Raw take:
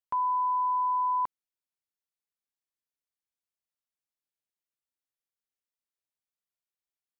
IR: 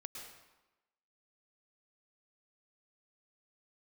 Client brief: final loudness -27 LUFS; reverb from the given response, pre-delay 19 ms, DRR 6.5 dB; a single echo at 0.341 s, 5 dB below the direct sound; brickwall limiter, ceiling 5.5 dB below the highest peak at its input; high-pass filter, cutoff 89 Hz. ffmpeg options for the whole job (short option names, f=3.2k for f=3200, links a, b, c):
-filter_complex "[0:a]highpass=89,alimiter=level_in=4.5dB:limit=-24dB:level=0:latency=1,volume=-4.5dB,aecho=1:1:341:0.562,asplit=2[a][b];[1:a]atrim=start_sample=2205,adelay=19[c];[b][c]afir=irnorm=-1:irlink=0,volume=-3dB[d];[a][d]amix=inputs=2:normalize=0,volume=0.5dB"